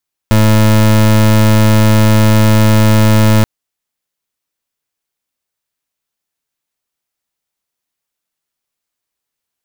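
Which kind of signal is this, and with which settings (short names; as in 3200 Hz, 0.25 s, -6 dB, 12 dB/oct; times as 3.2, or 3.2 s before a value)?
pulse 108 Hz, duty 28% -7.5 dBFS 3.13 s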